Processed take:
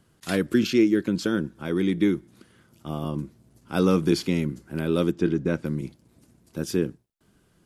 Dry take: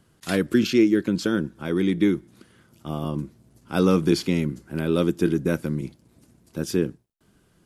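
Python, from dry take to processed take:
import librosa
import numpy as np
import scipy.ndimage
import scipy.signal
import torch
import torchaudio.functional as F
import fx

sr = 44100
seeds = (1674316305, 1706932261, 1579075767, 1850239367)

y = fx.air_absorb(x, sr, metres=90.0, at=(5.1, 5.64), fade=0.02)
y = y * 10.0 ** (-1.5 / 20.0)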